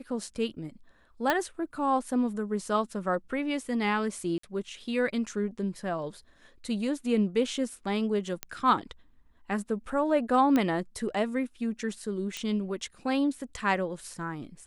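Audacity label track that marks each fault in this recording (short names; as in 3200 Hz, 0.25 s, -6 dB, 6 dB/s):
1.300000	1.300000	pop -11 dBFS
4.380000	4.430000	gap 54 ms
8.430000	8.430000	pop -14 dBFS
10.560000	10.560000	pop -14 dBFS
12.370000	12.370000	pop -19 dBFS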